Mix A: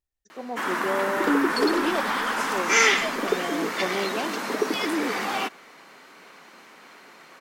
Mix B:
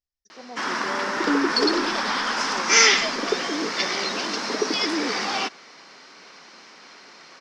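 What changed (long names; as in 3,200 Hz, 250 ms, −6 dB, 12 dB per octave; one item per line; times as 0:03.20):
speech −7.0 dB
master: add low-pass with resonance 5,300 Hz, resonance Q 4.4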